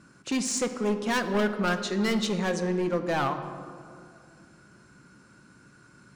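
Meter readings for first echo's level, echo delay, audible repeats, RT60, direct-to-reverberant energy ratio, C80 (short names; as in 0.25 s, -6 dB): none, none, none, 2.3 s, 7.0 dB, 10.5 dB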